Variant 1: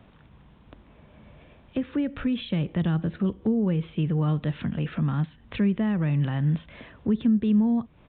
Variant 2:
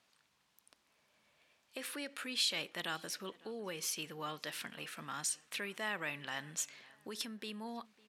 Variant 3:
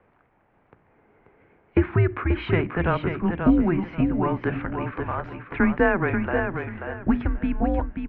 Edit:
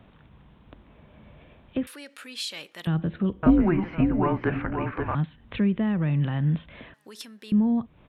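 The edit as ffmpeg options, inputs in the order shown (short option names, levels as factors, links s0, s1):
-filter_complex "[1:a]asplit=2[s0][s1];[0:a]asplit=4[s2][s3][s4][s5];[s2]atrim=end=1.872[s6];[s0]atrim=start=1.868:end=2.872[s7];[s3]atrim=start=2.868:end=3.432[s8];[2:a]atrim=start=3.428:end=5.152[s9];[s4]atrim=start=5.148:end=6.942[s10];[s1]atrim=start=6.938:end=7.522[s11];[s5]atrim=start=7.518[s12];[s6][s7]acrossfade=d=0.004:c1=hsin:c2=hsin[s13];[s13][s8]acrossfade=d=0.004:c1=hsin:c2=hsin[s14];[s14][s9]acrossfade=d=0.004:c1=hsin:c2=hsin[s15];[s15][s10]acrossfade=d=0.004:c1=hsin:c2=hsin[s16];[s16][s11]acrossfade=d=0.004:c1=hsin:c2=hsin[s17];[s17][s12]acrossfade=d=0.004:c1=hsin:c2=hsin"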